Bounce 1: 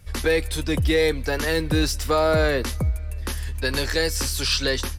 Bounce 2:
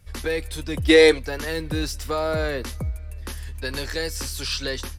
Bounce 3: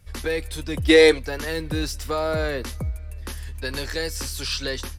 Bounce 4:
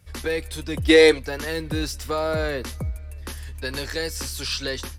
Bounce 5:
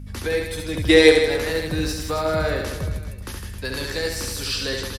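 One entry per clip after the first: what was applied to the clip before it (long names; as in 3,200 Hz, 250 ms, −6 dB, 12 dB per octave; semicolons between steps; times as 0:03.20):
gain on a spectral selection 0:00.89–0:01.19, 280–11,000 Hz +12 dB; level −5 dB
hard clipping −5.5 dBFS, distortion −41 dB
high-pass filter 45 Hz
mains hum 50 Hz, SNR 12 dB; reverse bouncing-ball delay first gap 70 ms, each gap 1.25×, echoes 5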